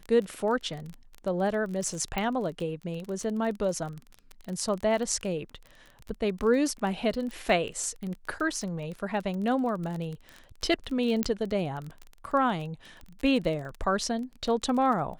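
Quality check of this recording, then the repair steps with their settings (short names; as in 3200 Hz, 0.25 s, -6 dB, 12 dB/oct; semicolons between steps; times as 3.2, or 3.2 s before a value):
crackle 21/s -33 dBFS
2.18 pop -16 dBFS
7.31 pop
11.23 pop -11 dBFS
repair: de-click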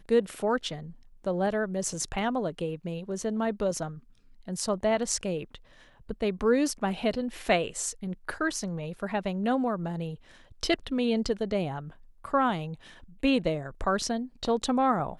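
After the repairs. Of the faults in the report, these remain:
2.18 pop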